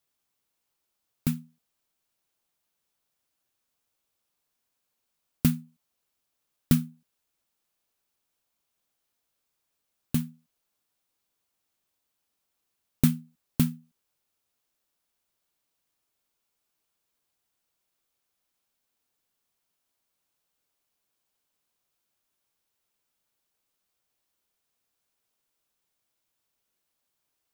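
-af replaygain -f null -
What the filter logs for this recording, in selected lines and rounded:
track_gain = +38.7 dB
track_peak = 0.356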